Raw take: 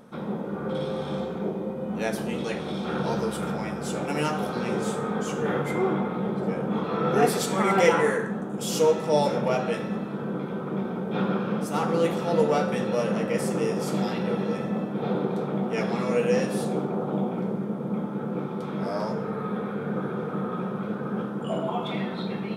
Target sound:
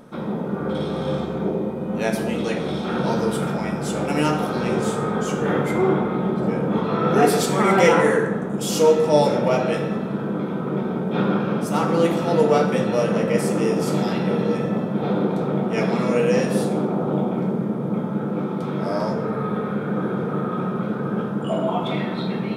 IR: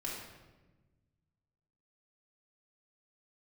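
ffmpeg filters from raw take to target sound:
-filter_complex "[0:a]asplit=2[link_01][link_02];[1:a]atrim=start_sample=2205,lowshelf=frequency=500:gain=5.5[link_03];[link_02][link_03]afir=irnorm=-1:irlink=0,volume=-7dB[link_04];[link_01][link_04]amix=inputs=2:normalize=0,volume=2dB"

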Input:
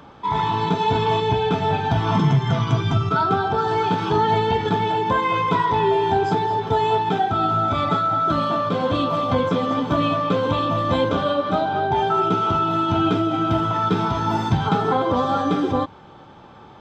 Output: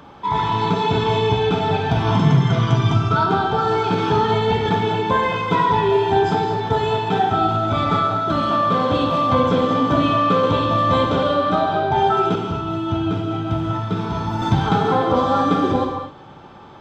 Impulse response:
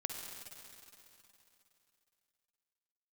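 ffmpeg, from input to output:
-filter_complex "[0:a]asettb=1/sr,asplit=3[link_01][link_02][link_03];[link_01]atrim=end=12.354[link_04];[link_02]atrim=start=12.35:end=14.42,asetpts=PTS-STARTPTS,afade=type=in:duration=0.004:curve=qsin,afade=type=out:start_time=2.066:duration=0.004:curve=qsin,acrossover=split=170[link_05][link_06];[link_06]acompressor=threshold=-27dB:ratio=3[link_07];[link_05][link_07]amix=inputs=2:normalize=0[link_08];[link_03]atrim=start=14.416[link_09];[link_04][link_08]acrossfade=duration=0.004:curve1=hsin:curve2=qsin[link_10];[link_10][link_09]acrossfade=duration=0.004:curve1=qsin:curve2=hsin[link_11];[1:a]atrim=start_sample=2205,afade=type=out:start_time=0.31:duration=0.01,atrim=end_sample=14112[link_12];[link_11][link_12]afir=irnorm=-1:irlink=0,volume=3dB"

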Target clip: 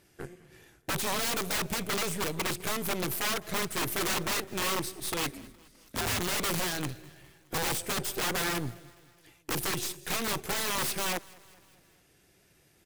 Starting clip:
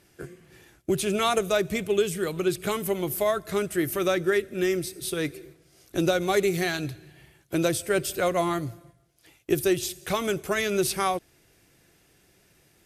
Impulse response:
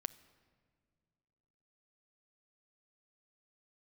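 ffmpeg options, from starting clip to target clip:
-filter_complex "[0:a]aeval=exprs='(mod(13.3*val(0)+1,2)-1)/13.3':channel_layout=same,aeval=exprs='0.0794*(cos(1*acos(clip(val(0)/0.0794,-1,1)))-cos(1*PI/2))+0.0126*(cos(6*acos(clip(val(0)/0.0794,-1,1)))-cos(6*PI/2))':channel_layout=same,asettb=1/sr,asplit=3[link_01][link_02][link_03];[link_01]atrim=end=5.334[link_04];[link_02]atrim=start=5.33:end=6.2,asetpts=PTS-STARTPTS,afade=type=in:duration=0.004:curve=qsin,afade=type=out:start_time=0.866:duration=0.004:curve=qsin,afreqshift=-110[link_05];[link_03]atrim=start=6.196[link_06];[link_04][link_05]acrossfade=duration=0.004:curve1=hsin:curve2=qsin[link_07];[link_07][link_06]acrossfade=duration=0.004:curve1=qsin:curve2=hsin,asplit=2[link_08][link_09];[link_09]aecho=0:1:207|414|621|828:0.0668|0.0388|0.0225|0.013[link_10];[link_08][link_10]amix=inputs=2:normalize=0,volume=-3dB"

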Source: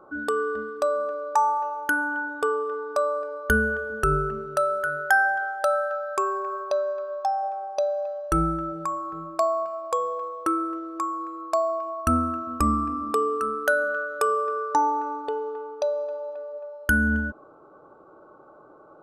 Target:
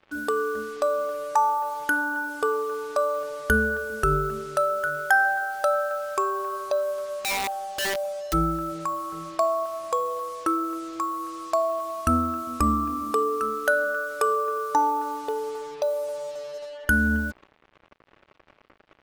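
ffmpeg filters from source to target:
ffmpeg -i in.wav -filter_complex "[0:a]acrusher=bits=6:mix=0:aa=0.5,asplit=3[link_01][link_02][link_03];[link_01]afade=type=out:start_time=7.09:duration=0.02[link_04];[link_02]aeval=exprs='(mod(13.3*val(0)+1,2)-1)/13.3':channel_layout=same,afade=type=in:start_time=7.09:duration=0.02,afade=type=out:start_time=8.32:duration=0.02[link_05];[link_03]afade=type=in:start_time=8.32:duration=0.02[link_06];[link_04][link_05][link_06]amix=inputs=3:normalize=0" out.wav

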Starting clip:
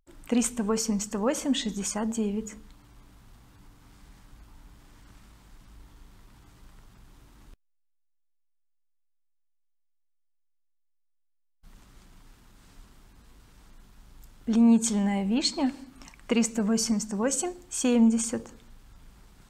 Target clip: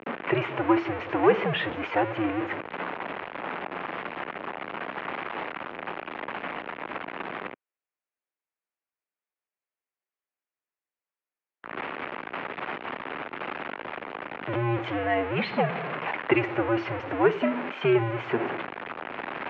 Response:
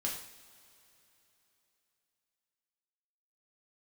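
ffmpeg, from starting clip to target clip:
-af "aeval=exprs='val(0)+0.5*0.0447*sgn(val(0))':channel_layout=same,highpass=frequency=410:width_type=q:width=0.5412,highpass=frequency=410:width_type=q:width=1.307,lowpass=frequency=2700:width_type=q:width=0.5176,lowpass=frequency=2700:width_type=q:width=0.7071,lowpass=frequency=2700:width_type=q:width=1.932,afreqshift=-110,volume=7dB"

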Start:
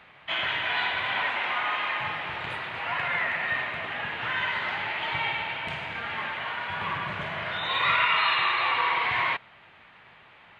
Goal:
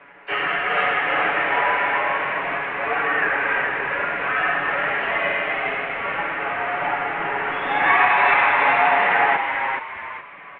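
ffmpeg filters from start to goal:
ffmpeg -i in.wav -filter_complex "[0:a]aecho=1:1:7.3:0.93,aresample=16000,acrusher=bits=5:mode=log:mix=0:aa=0.000001,aresample=44100,asplit=5[link_01][link_02][link_03][link_04][link_05];[link_02]adelay=420,afreqshift=100,volume=-5dB[link_06];[link_03]adelay=840,afreqshift=200,volume=-14.4dB[link_07];[link_04]adelay=1260,afreqshift=300,volume=-23.7dB[link_08];[link_05]adelay=1680,afreqshift=400,volume=-33.1dB[link_09];[link_01][link_06][link_07][link_08][link_09]amix=inputs=5:normalize=0,asplit=2[link_10][link_11];[link_11]asetrate=66075,aresample=44100,atempo=0.66742,volume=-12dB[link_12];[link_10][link_12]amix=inputs=2:normalize=0,highpass=frequency=390:width_type=q:width=0.5412,highpass=frequency=390:width_type=q:width=1.307,lowpass=frequency=2800:width_type=q:width=0.5176,lowpass=frequency=2800:width_type=q:width=0.7071,lowpass=frequency=2800:width_type=q:width=1.932,afreqshift=-250,volume=4dB" out.wav

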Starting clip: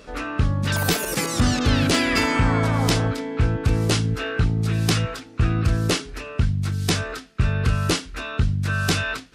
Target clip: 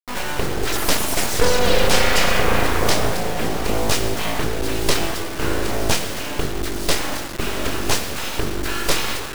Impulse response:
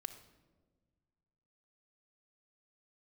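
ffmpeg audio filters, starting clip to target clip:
-filter_complex "[0:a]lowshelf=frequency=120:width_type=q:width=1.5:gain=-11[link_01];[1:a]atrim=start_sample=2205,asetrate=26019,aresample=44100[link_02];[link_01][link_02]afir=irnorm=-1:irlink=0,aeval=exprs='abs(val(0))':channel_layout=same,acrusher=bits=3:dc=4:mix=0:aa=0.000001,volume=5dB"

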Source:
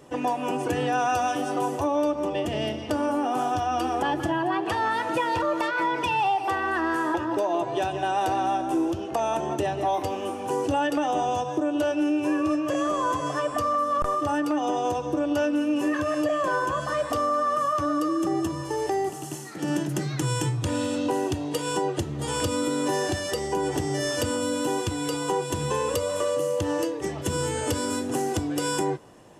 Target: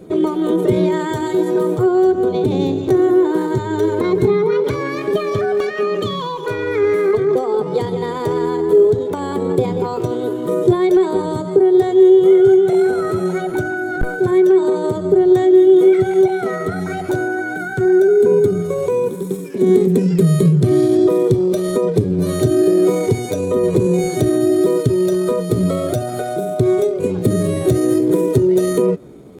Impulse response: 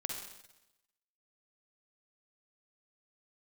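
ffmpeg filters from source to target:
-af "lowshelf=frequency=440:width_type=q:width=1.5:gain=13.5,asetrate=55563,aresample=44100,atempo=0.793701"

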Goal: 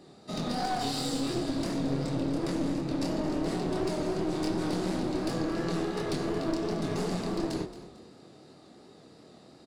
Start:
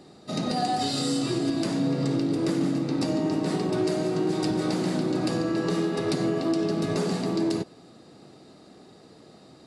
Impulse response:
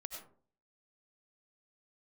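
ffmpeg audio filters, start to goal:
-filter_complex "[0:a]flanger=delay=22.5:depth=7:speed=2.8,aeval=exprs='clip(val(0),-1,0.0237)':channel_layout=same,asplit=4[link_01][link_02][link_03][link_04];[link_02]adelay=224,afreqshift=33,volume=-14dB[link_05];[link_03]adelay=448,afreqshift=66,volume=-23.4dB[link_06];[link_04]adelay=672,afreqshift=99,volume=-32.7dB[link_07];[link_01][link_05][link_06][link_07]amix=inputs=4:normalize=0"

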